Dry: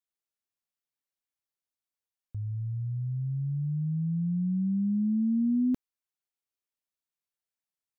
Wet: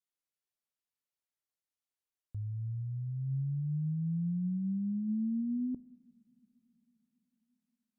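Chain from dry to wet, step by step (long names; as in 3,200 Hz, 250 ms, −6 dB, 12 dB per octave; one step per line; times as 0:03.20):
treble cut that deepens with the level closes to 440 Hz, closed at −24.5 dBFS
brickwall limiter −26.5 dBFS, peak gain reduction 4.5 dB
convolution reverb, pre-delay 3 ms, DRR 18 dB
level −3.5 dB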